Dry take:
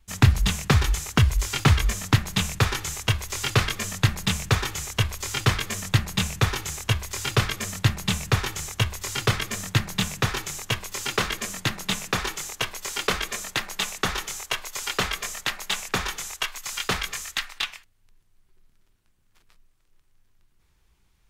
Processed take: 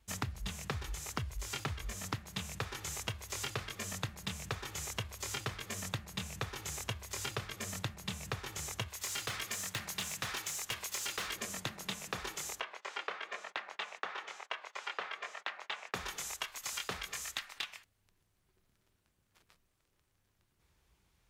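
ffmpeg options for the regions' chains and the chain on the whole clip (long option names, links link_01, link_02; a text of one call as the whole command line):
ffmpeg -i in.wav -filter_complex "[0:a]asettb=1/sr,asplit=3[link_01][link_02][link_03];[link_01]atrim=end=8.884[link_04];[link_02]atrim=start=8.88:end=11.36,asetpts=PTS-STARTPTS,afade=type=in:duration=0.004:curve=qsin,afade=type=out:start_time=2.476:duration=0.004:curve=qsin,tiltshelf=frequency=700:gain=-6,aeval=exprs='(tanh(11.2*val(0)+0.3)-tanh(0.3))/11.2':channel_layout=same[link_05];[link_03]atrim=start=11.356[link_06];[link_04][link_05]acrossfade=duration=0.004:curve1=hsin:curve2=qsin[link_07];[link_07][link_06]acrossfade=duration=0.004:curve1=qsin:curve2=hsin,asettb=1/sr,asplit=3[link_08][link_09][link_10];[link_08]atrim=end=12.604[link_11];[link_09]atrim=start=12.6:end=15.94,asetpts=PTS-STARTPTS,afade=type=in:duration=0.004:curve=qsin,afade=type=out:start_time=3.336:duration=0.004:curve=qsin,highpass=570,lowpass=2400,agate=range=-15dB:threshold=-51dB:ratio=16:release=100:detection=peak[link_12];[link_10]atrim=start=15.936[link_13];[link_11][link_12]acrossfade=duration=0.004:curve1=hsin:curve2=qsin[link_14];[link_14][link_13]acrossfade=duration=0.004:curve1=qsin:curve2=hsin,highpass=50,equalizer=frequency=570:width=1.5:gain=3.5,acompressor=threshold=-31dB:ratio=12,volume=-4.5dB" out.wav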